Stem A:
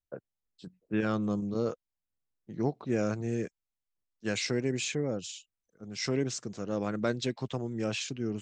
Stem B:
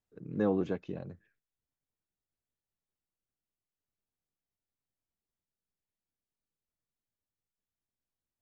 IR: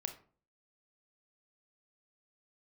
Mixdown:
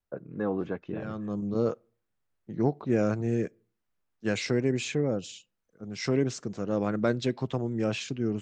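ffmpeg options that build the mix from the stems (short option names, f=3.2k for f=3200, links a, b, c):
-filter_complex "[0:a]acontrast=70,volume=-3dB,asplit=2[a][b];[b]volume=-19dB[c];[1:a]equalizer=f=1.5k:w=0.79:g=6.5,dynaudnorm=f=370:g=5:m=8.5dB,volume=-3dB,asplit=2[d][e];[e]apad=whole_len=371198[f];[a][f]sidechaincompress=threshold=-46dB:ratio=8:attack=16:release=510[g];[2:a]atrim=start_sample=2205[h];[c][h]afir=irnorm=-1:irlink=0[i];[g][d][i]amix=inputs=3:normalize=0,highshelf=f=3k:g=-9"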